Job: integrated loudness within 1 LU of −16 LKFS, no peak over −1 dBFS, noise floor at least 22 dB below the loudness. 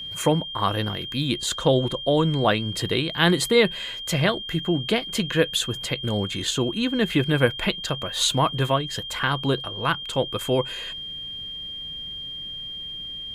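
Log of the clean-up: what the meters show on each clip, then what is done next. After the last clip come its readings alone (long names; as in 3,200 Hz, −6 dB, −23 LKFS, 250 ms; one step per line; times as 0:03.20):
interfering tone 3,200 Hz; level of the tone −32 dBFS; integrated loudness −24.0 LKFS; sample peak −3.5 dBFS; target loudness −16.0 LKFS
→ notch filter 3,200 Hz, Q 30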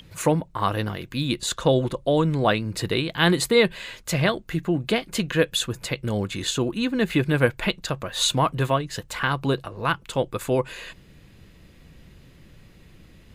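interfering tone none found; integrated loudness −24.0 LKFS; sample peak −4.0 dBFS; target loudness −16.0 LKFS
→ level +8 dB
brickwall limiter −1 dBFS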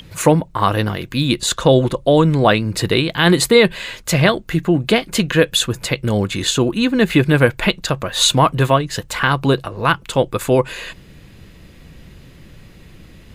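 integrated loudness −16.5 LKFS; sample peak −1.0 dBFS; background noise floor −43 dBFS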